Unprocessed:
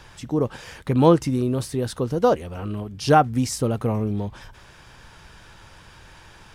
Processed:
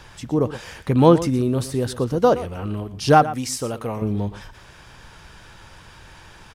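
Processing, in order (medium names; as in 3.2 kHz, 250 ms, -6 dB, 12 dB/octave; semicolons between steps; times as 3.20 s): 3.23–4.02 s: bass shelf 380 Hz -11 dB; delay 118 ms -15 dB; trim +2 dB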